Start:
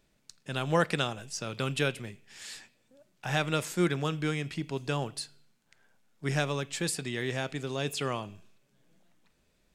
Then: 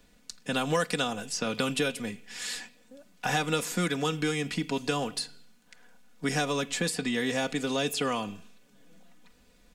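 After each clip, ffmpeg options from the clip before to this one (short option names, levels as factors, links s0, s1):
-filter_complex "[0:a]aecho=1:1:4.1:0.7,acrossover=split=110|1400|4100[s0][s1][s2][s3];[s0]acompressor=threshold=0.00126:ratio=4[s4];[s1]acompressor=threshold=0.0178:ratio=4[s5];[s2]acompressor=threshold=0.00631:ratio=4[s6];[s3]acompressor=threshold=0.00794:ratio=4[s7];[s4][s5][s6][s7]amix=inputs=4:normalize=0,volume=2.37"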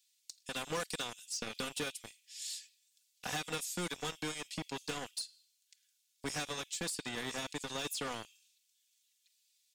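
-filter_complex "[0:a]acrossover=split=3200[s0][s1];[s0]acrusher=bits=3:mix=0:aa=0.5[s2];[s2][s1]amix=inputs=2:normalize=0,asoftclip=type=tanh:threshold=0.0473,volume=0.668"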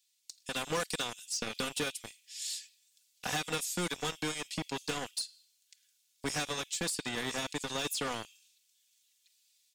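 -af "dynaudnorm=f=220:g=3:m=1.78,volume=0.891"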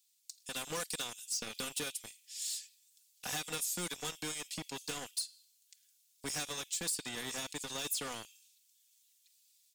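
-filter_complex "[0:a]asplit=2[s0][s1];[s1]asoftclip=type=tanh:threshold=0.0126,volume=0.355[s2];[s0][s2]amix=inputs=2:normalize=0,crystalizer=i=1.5:c=0,volume=0.398"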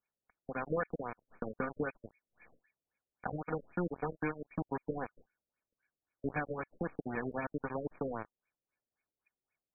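-af "aeval=exprs='0.0708*(cos(1*acos(clip(val(0)/0.0708,-1,1)))-cos(1*PI/2))+0.000891*(cos(4*acos(clip(val(0)/0.0708,-1,1)))-cos(4*PI/2))':c=same,asuperstop=centerf=2000:order=4:qfactor=7.4,afftfilt=real='re*lt(b*sr/1024,600*pow(2500/600,0.5+0.5*sin(2*PI*3.8*pts/sr)))':imag='im*lt(b*sr/1024,600*pow(2500/600,0.5+0.5*sin(2*PI*3.8*pts/sr)))':win_size=1024:overlap=0.75,volume=2.51"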